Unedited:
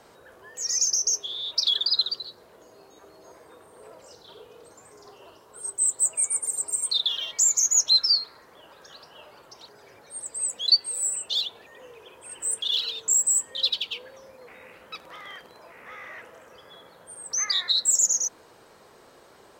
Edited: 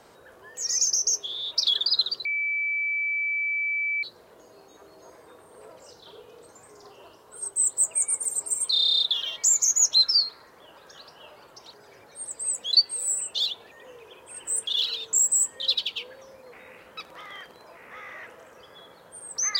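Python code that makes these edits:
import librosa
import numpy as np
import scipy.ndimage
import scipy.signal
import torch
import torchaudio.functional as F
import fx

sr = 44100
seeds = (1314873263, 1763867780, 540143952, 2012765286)

y = fx.edit(x, sr, fx.insert_tone(at_s=2.25, length_s=1.78, hz=2310.0, db=-24.0),
    fx.stutter(start_s=6.95, slice_s=0.03, count=10), tone=tone)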